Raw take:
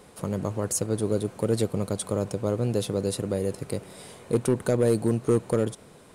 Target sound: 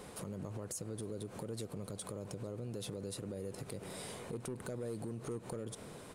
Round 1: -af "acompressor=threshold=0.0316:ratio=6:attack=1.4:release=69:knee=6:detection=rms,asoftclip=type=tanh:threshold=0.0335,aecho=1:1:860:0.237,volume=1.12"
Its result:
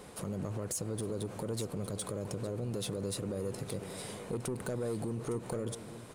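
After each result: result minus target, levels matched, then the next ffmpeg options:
compression: peak gain reduction -7.5 dB; echo-to-direct +7.5 dB
-af "acompressor=threshold=0.0112:ratio=6:attack=1.4:release=69:knee=6:detection=rms,asoftclip=type=tanh:threshold=0.0335,aecho=1:1:860:0.237,volume=1.12"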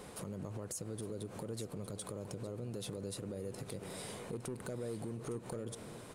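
echo-to-direct +7.5 dB
-af "acompressor=threshold=0.0112:ratio=6:attack=1.4:release=69:knee=6:detection=rms,asoftclip=type=tanh:threshold=0.0335,aecho=1:1:860:0.1,volume=1.12"

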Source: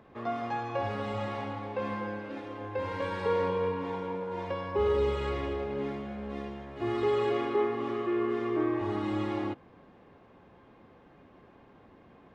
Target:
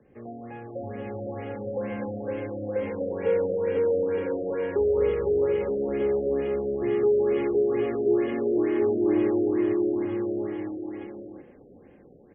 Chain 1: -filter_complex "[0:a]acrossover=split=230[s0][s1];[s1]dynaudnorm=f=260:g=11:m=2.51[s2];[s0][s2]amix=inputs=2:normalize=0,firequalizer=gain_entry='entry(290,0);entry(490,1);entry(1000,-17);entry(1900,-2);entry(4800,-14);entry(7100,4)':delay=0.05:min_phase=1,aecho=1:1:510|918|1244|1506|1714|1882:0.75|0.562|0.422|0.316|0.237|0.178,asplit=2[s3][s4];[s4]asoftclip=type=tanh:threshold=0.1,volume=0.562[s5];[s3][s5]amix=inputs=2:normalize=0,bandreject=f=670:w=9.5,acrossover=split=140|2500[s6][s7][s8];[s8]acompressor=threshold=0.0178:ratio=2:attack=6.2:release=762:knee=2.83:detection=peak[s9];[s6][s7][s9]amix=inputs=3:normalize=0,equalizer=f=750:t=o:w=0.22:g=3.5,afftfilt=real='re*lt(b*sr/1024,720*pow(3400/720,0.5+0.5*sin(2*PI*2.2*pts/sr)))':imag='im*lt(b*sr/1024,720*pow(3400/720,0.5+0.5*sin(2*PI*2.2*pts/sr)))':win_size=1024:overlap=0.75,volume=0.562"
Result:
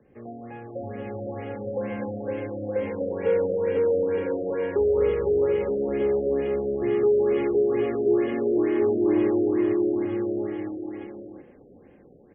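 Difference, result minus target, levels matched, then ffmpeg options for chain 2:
saturation: distortion -6 dB
-filter_complex "[0:a]acrossover=split=230[s0][s1];[s1]dynaudnorm=f=260:g=11:m=2.51[s2];[s0][s2]amix=inputs=2:normalize=0,firequalizer=gain_entry='entry(290,0);entry(490,1);entry(1000,-17);entry(1900,-2);entry(4800,-14);entry(7100,4)':delay=0.05:min_phase=1,aecho=1:1:510|918|1244|1506|1714|1882:0.75|0.562|0.422|0.316|0.237|0.178,asplit=2[s3][s4];[s4]asoftclip=type=tanh:threshold=0.0335,volume=0.562[s5];[s3][s5]amix=inputs=2:normalize=0,bandreject=f=670:w=9.5,acrossover=split=140|2500[s6][s7][s8];[s8]acompressor=threshold=0.0178:ratio=2:attack=6.2:release=762:knee=2.83:detection=peak[s9];[s6][s7][s9]amix=inputs=3:normalize=0,equalizer=f=750:t=o:w=0.22:g=3.5,afftfilt=real='re*lt(b*sr/1024,720*pow(3400/720,0.5+0.5*sin(2*PI*2.2*pts/sr)))':imag='im*lt(b*sr/1024,720*pow(3400/720,0.5+0.5*sin(2*PI*2.2*pts/sr)))':win_size=1024:overlap=0.75,volume=0.562"

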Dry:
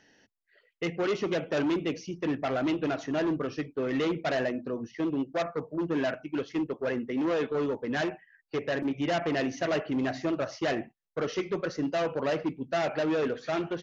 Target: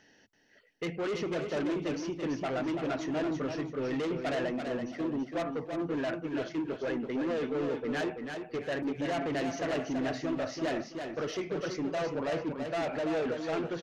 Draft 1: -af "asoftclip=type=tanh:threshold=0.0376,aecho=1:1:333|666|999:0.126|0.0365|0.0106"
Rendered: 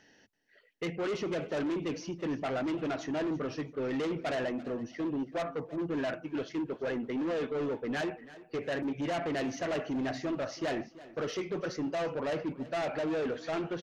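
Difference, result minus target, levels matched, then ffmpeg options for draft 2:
echo-to-direct -12 dB
-af "asoftclip=type=tanh:threshold=0.0376,aecho=1:1:333|666|999|1332:0.501|0.145|0.0421|0.0122"

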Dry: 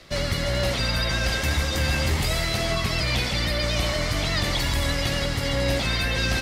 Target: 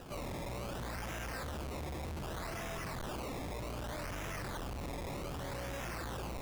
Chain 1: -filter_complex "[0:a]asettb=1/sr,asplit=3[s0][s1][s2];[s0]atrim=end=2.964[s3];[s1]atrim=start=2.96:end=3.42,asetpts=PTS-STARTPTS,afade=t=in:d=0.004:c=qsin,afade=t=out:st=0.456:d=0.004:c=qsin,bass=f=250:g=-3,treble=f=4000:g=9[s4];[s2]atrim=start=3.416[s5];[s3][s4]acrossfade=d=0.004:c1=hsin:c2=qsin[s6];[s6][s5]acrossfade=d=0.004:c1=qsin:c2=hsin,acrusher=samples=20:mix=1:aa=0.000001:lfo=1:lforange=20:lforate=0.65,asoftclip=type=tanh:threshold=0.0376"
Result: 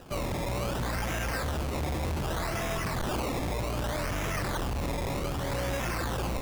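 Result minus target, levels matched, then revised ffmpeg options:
saturation: distortion -4 dB
-filter_complex "[0:a]asettb=1/sr,asplit=3[s0][s1][s2];[s0]atrim=end=2.964[s3];[s1]atrim=start=2.96:end=3.42,asetpts=PTS-STARTPTS,afade=t=in:d=0.004:c=qsin,afade=t=out:st=0.456:d=0.004:c=qsin,bass=f=250:g=-3,treble=f=4000:g=9[s4];[s2]atrim=start=3.416[s5];[s3][s4]acrossfade=d=0.004:c1=hsin:c2=qsin[s6];[s6][s5]acrossfade=d=0.004:c1=qsin:c2=hsin,acrusher=samples=20:mix=1:aa=0.000001:lfo=1:lforange=20:lforate=0.65,asoftclip=type=tanh:threshold=0.01"

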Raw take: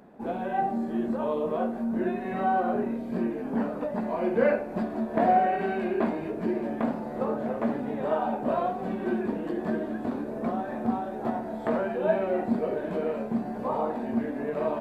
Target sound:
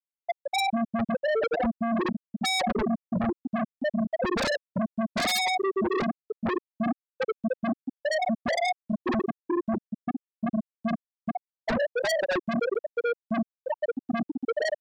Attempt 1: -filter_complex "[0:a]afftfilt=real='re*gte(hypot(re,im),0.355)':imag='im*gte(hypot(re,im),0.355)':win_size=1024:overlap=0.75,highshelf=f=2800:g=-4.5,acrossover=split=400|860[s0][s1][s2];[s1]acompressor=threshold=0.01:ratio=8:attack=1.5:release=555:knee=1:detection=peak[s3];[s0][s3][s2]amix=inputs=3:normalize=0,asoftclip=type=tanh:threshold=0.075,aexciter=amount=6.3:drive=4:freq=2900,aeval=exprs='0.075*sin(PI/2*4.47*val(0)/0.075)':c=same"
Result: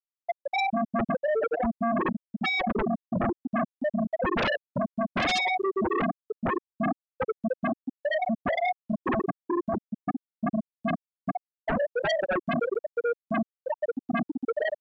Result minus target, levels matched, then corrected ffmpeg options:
compression: peak gain reduction +9.5 dB; saturation: distortion -9 dB
-filter_complex "[0:a]afftfilt=real='re*gte(hypot(re,im),0.355)':imag='im*gte(hypot(re,im),0.355)':win_size=1024:overlap=0.75,highshelf=f=2800:g=-4.5,acrossover=split=400|860[s0][s1][s2];[s1]acompressor=threshold=0.0355:ratio=8:attack=1.5:release=555:knee=1:detection=peak[s3];[s0][s3][s2]amix=inputs=3:normalize=0,asoftclip=type=tanh:threshold=0.0316,aexciter=amount=6.3:drive=4:freq=2900,aeval=exprs='0.075*sin(PI/2*4.47*val(0)/0.075)':c=same"

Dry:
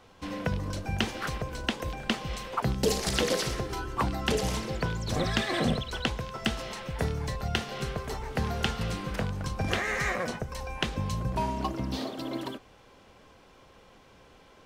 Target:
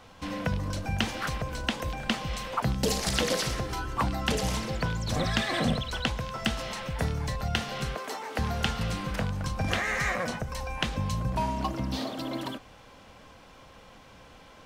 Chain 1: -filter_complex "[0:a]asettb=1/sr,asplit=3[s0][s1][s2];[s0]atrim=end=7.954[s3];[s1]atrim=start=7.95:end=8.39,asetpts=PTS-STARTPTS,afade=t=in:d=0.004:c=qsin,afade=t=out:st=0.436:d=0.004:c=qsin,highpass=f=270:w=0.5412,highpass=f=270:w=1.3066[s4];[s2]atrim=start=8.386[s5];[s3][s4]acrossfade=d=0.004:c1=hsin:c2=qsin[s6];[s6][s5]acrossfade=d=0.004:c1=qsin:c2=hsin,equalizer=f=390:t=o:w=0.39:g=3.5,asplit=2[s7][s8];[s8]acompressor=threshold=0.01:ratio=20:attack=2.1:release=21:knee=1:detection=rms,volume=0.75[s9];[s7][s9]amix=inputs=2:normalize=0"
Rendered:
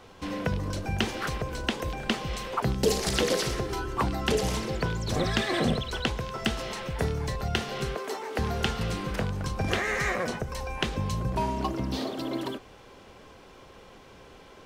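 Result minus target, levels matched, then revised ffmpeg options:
500 Hz band +3.0 dB
-filter_complex "[0:a]asettb=1/sr,asplit=3[s0][s1][s2];[s0]atrim=end=7.954[s3];[s1]atrim=start=7.95:end=8.39,asetpts=PTS-STARTPTS,afade=t=in:d=0.004:c=qsin,afade=t=out:st=0.436:d=0.004:c=qsin,highpass=f=270:w=0.5412,highpass=f=270:w=1.3066[s4];[s2]atrim=start=8.386[s5];[s3][s4]acrossfade=d=0.004:c1=hsin:c2=qsin[s6];[s6][s5]acrossfade=d=0.004:c1=qsin:c2=hsin,equalizer=f=390:t=o:w=0.39:g=-8,asplit=2[s7][s8];[s8]acompressor=threshold=0.01:ratio=20:attack=2.1:release=21:knee=1:detection=rms,volume=0.75[s9];[s7][s9]amix=inputs=2:normalize=0"

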